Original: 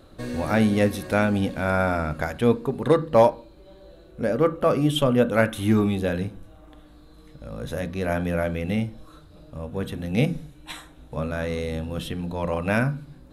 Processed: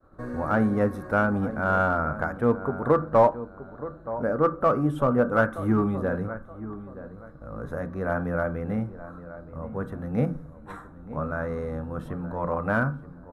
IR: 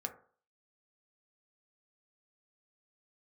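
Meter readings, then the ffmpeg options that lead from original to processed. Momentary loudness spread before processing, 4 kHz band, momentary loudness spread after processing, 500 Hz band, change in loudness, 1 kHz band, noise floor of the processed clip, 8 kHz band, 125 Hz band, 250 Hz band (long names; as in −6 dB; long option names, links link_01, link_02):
15 LU, below −15 dB, 17 LU, −2.5 dB, −2.0 dB, +1.5 dB, −46 dBFS, below −15 dB, −3.0 dB, −3.0 dB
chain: -filter_complex "[0:a]highshelf=frequency=2000:width_type=q:width=3:gain=-14,asplit=2[link_01][link_02];[link_02]adelay=924,lowpass=frequency=1600:poles=1,volume=-14dB,asplit=2[link_03][link_04];[link_04]adelay=924,lowpass=frequency=1600:poles=1,volume=0.3,asplit=2[link_05][link_06];[link_06]adelay=924,lowpass=frequency=1600:poles=1,volume=0.3[link_07];[link_01][link_03][link_05][link_07]amix=inputs=4:normalize=0,asplit=2[link_08][link_09];[link_09]aeval=exprs='clip(val(0),-1,0.2)':channel_layout=same,volume=-7dB[link_10];[link_08][link_10]amix=inputs=2:normalize=0,agate=range=-33dB:threshold=-41dB:ratio=3:detection=peak,volume=-6.5dB"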